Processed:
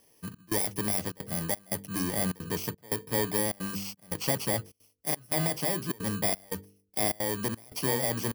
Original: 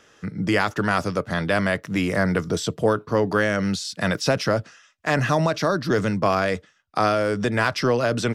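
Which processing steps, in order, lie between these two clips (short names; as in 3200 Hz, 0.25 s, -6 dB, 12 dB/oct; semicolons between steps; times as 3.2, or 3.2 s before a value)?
FFT order left unsorted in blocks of 32 samples; de-hum 49.42 Hz, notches 10; step gate "xxxx..xxxxxxx." 175 bpm -24 dB; gain -7.5 dB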